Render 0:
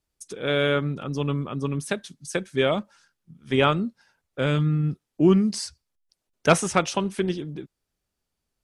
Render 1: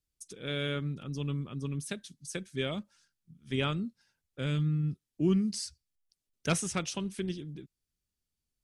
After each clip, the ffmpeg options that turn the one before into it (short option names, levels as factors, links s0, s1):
-af "equalizer=f=810:w=0.5:g=-12.5,volume=0.596"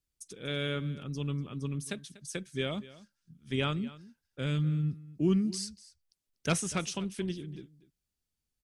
-af "aecho=1:1:242:0.119"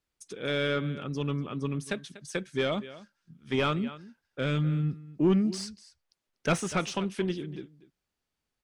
-filter_complex "[0:a]asplit=2[s0][s1];[s1]highpass=f=720:p=1,volume=6.31,asoftclip=type=tanh:threshold=0.158[s2];[s0][s2]amix=inputs=2:normalize=0,lowpass=f=1200:p=1,volume=0.501,volume=1.41"